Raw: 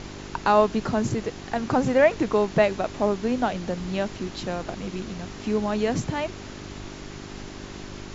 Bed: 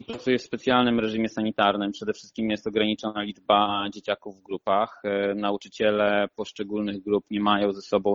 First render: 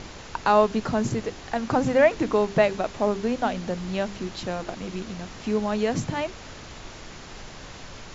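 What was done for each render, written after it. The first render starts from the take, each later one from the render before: de-hum 50 Hz, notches 8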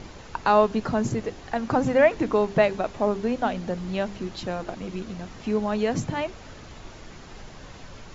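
noise reduction 6 dB, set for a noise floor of -42 dBFS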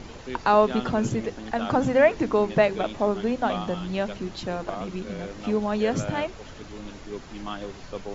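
add bed -13 dB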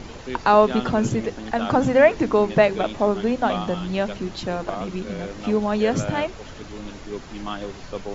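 trim +3.5 dB

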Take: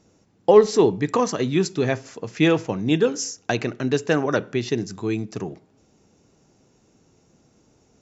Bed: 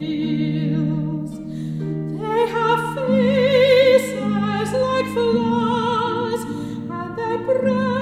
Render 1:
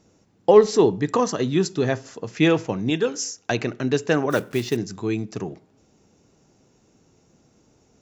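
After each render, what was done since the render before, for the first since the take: 0.76–2.29 s: peaking EQ 2.3 kHz -7 dB 0.22 oct; 2.90–3.51 s: bass shelf 470 Hz -6 dB; 4.30–4.78 s: block-companded coder 5-bit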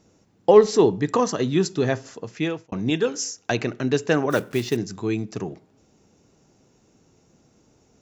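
2.09–2.72 s: fade out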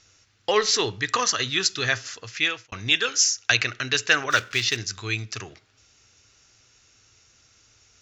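FFT filter 110 Hz 0 dB, 160 Hz -17 dB, 300 Hz -13 dB, 600 Hz -8 dB, 920 Hz -6 dB, 1.3 kHz +7 dB, 2.7 kHz +11 dB, 4.4 kHz +12 dB, 6.7 kHz +9 dB, 9.7 kHz -8 dB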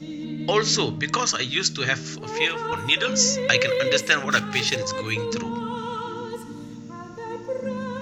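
add bed -10.5 dB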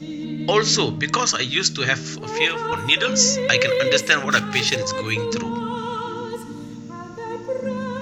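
trim +3 dB; peak limiter -2 dBFS, peak gain reduction 2 dB

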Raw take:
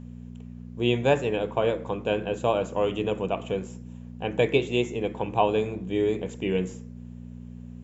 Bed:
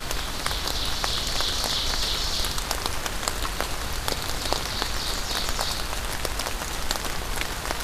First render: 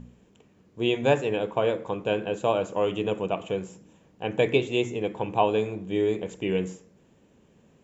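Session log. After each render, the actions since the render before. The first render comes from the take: de-hum 60 Hz, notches 4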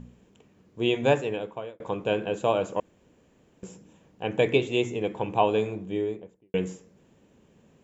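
1.09–1.80 s: fade out; 2.80–3.63 s: room tone; 5.66–6.54 s: studio fade out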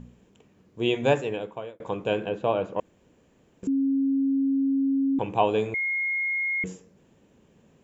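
2.29–2.79 s: distance through air 220 m; 3.67–5.19 s: bleep 272 Hz -20.5 dBFS; 5.74–6.64 s: bleep 2.15 kHz -24 dBFS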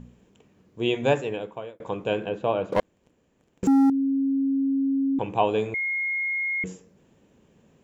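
2.72–3.90 s: waveshaping leveller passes 3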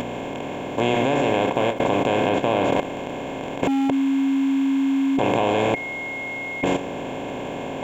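spectral levelling over time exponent 0.2; level held to a coarse grid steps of 10 dB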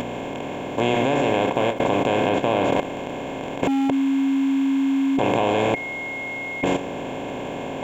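no audible change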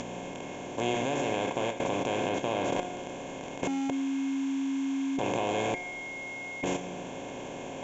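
resonant low-pass 6.3 kHz, resonance Q 5.3; feedback comb 180 Hz, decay 1.3 s, mix 70%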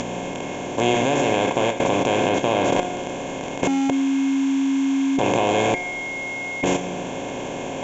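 trim +10 dB

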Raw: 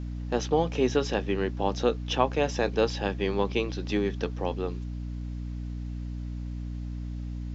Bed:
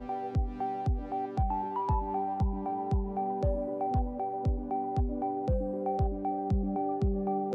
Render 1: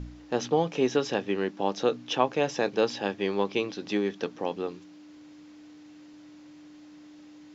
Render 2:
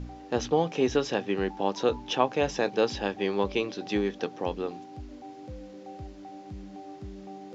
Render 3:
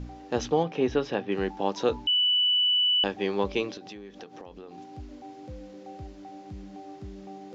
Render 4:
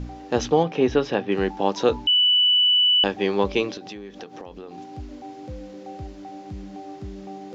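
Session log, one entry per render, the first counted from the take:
de-hum 60 Hz, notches 4
add bed -13 dB
0.63–1.32 s: distance through air 170 m; 2.07–3.04 s: bleep 2.97 kHz -20 dBFS; 3.77–4.78 s: compression 12:1, threshold -39 dBFS
trim +5.5 dB

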